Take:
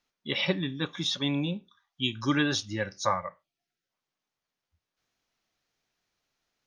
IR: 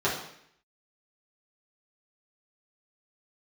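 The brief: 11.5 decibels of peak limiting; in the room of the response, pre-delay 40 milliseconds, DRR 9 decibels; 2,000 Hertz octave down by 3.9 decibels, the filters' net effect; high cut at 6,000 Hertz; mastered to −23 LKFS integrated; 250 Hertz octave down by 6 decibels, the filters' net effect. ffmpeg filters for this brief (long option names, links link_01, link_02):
-filter_complex "[0:a]lowpass=6000,equalizer=frequency=250:width_type=o:gain=-8,equalizer=frequency=2000:width_type=o:gain=-5,alimiter=level_in=1dB:limit=-24dB:level=0:latency=1,volume=-1dB,asplit=2[link_01][link_02];[1:a]atrim=start_sample=2205,adelay=40[link_03];[link_02][link_03]afir=irnorm=-1:irlink=0,volume=-22dB[link_04];[link_01][link_04]amix=inputs=2:normalize=0,volume=13dB"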